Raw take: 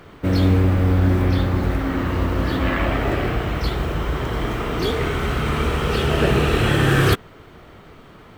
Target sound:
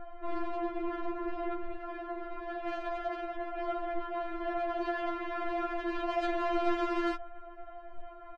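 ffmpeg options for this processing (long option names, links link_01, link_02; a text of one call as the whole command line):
ffmpeg -i in.wav -filter_complex "[0:a]lowpass=1000,aecho=1:1:1.6:0.85,acontrast=86,asoftclip=type=tanh:threshold=-16.5dB,asettb=1/sr,asplit=3[link_01][link_02][link_03];[link_01]atrim=end=1.574[link_04];[link_02]atrim=start=1.57:end=3.58,asetpts=PTS-STARTPTS,afade=type=in:duration=0.004:curve=qsin,afade=type=out:start_time=2.006:duration=0.004:curve=qsin,flanger=delay=0.4:depth=6.6:regen=-83:speed=1.3:shape=sinusoidal[link_05];[link_03]atrim=start=3.576[link_06];[link_04][link_05]acrossfade=duration=0.004:curve1=hsin:curve2=qsin[link_07];[link_07][link_06]acrossfade=duration=0.004:curve1=qsin:curve2=hsin,afftfilt=real='re*4*eq(mod(b,16),0)':imag='im*4*eq(mod(b,16),0)':win_size=2048:overlap=0.75,volume=-5.5dB" out.wav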